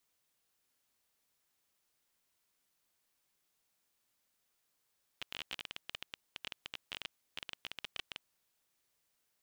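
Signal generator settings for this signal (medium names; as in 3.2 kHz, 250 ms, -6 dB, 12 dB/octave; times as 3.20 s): random clicks 18 per s -23.5 dBFS 3.03 s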